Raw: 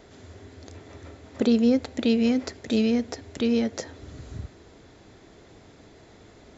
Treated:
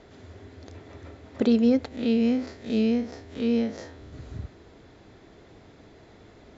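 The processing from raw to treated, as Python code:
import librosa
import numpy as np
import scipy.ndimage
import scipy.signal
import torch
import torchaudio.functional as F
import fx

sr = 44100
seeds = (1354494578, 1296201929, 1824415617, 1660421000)

y = fx.spec_blur(x, sr, span_ms=95.0, at=(1.88, 4.13))
y = fx.air_absorb(y, sr, metres=92.0)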